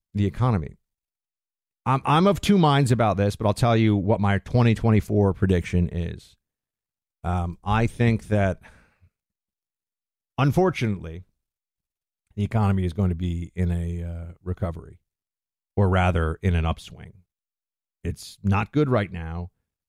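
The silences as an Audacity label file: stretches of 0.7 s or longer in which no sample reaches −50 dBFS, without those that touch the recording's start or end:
0.750000	1.860000	silence
6.340000	7.240000	silence
9.050000	10.380000	silence
11.230000	12.310000	silence
14.960000	15.770000	silence
17.210000	18.040000	silence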